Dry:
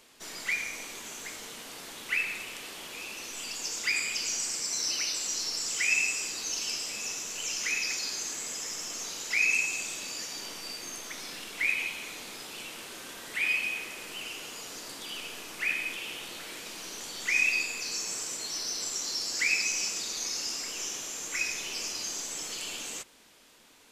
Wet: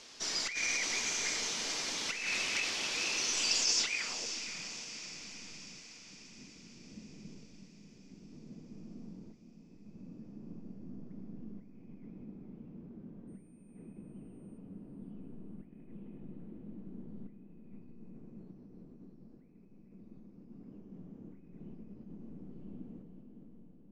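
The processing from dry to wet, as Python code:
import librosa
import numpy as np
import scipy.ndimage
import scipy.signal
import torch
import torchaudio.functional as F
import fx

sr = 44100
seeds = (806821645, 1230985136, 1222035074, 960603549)

y = fx.reverse_delay_fb(x, sr, ms=219, feedback_pct=46, wet_db=-7.5)
y = fx.over_compress(y, sr, threshold_db=-36.0, ratio=-1.0)
y = fx.filter_sweep_lowpass(y, sr, from_hz=5600.0, to_hz=200.0, start_s=3.79, end_s=4.45, q=2.9)
y = fx.dmg_tone(y, sr, hz=8900.0, level_db=-72.0, at=(13.27, 14.57), fade=0.02)
y = fx.echo_diffused(y, sr, ms=559, feedback_pct=59, wet_db=-9.5)
y = y * 10.0 ** (-1.5 / 20.0)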